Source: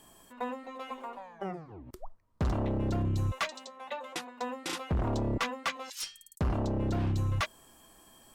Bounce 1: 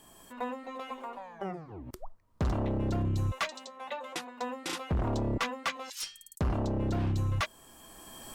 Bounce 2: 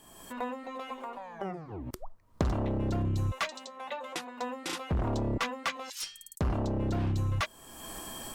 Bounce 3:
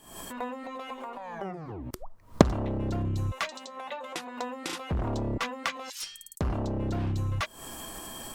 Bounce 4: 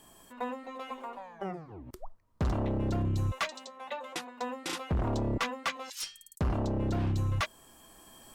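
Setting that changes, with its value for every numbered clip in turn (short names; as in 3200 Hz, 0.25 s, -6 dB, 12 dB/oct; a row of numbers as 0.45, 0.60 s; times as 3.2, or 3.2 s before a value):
recorder AGC, rising by: 14, 36, 90, 5.2 dB/s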